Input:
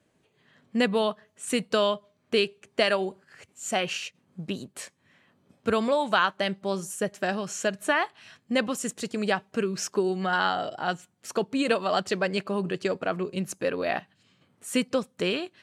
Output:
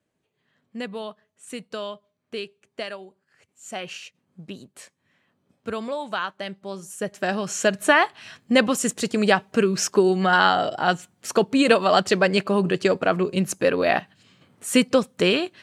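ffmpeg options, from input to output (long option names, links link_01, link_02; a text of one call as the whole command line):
ffmpeg -i in.wav -af "volume=14.5dB,afade=type=out:start_time=2.81:duration=0.28:silence=0.446684,afade=type=in:start_time=3.09:duration=0.81:silence=0.298538,afade=type=in:start_time=6.81:duration=0.98:silence=0.237137" out.wav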